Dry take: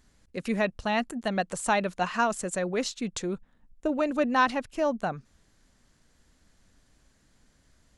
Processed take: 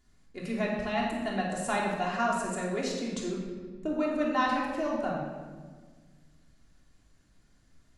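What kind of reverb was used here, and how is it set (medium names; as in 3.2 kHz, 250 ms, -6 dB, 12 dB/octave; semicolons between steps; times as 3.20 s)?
simulated room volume 1500 m³, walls mixed, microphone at 3.2 m; trim -8.5 dB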